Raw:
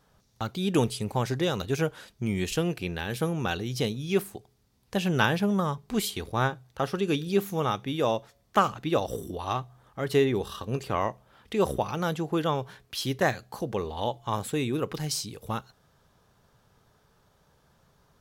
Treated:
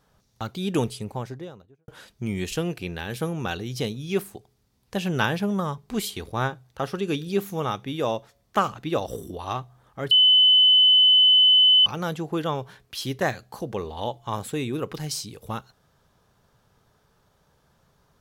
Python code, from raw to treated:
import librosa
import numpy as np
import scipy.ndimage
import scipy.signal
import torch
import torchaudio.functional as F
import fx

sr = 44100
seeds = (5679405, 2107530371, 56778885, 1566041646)

y = fx.studio_fade_out(x, sr, start_s=0.7, length_s=1.18)
y = fx.edit(y, sr, fx.bleep(start_s=10.11, length_s=1.75, hz=3020.0, db=-12.5), tone=tone)